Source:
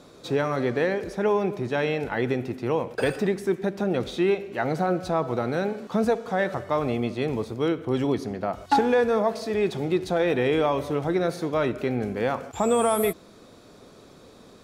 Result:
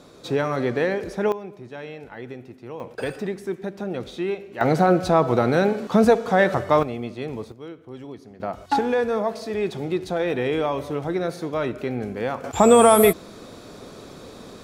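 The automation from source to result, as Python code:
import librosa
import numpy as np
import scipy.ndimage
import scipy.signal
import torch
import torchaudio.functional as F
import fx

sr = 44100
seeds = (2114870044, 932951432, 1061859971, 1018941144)

y = fx.gain(x, sr, db=fx.steps((0.0, 1.5), (1.32, -11.0), (2.8, -4.0), (4.61, 7.0), (6.83, -4.0), (7.52, -13.5), (8.4, -1.0), (12.44, 8.5)))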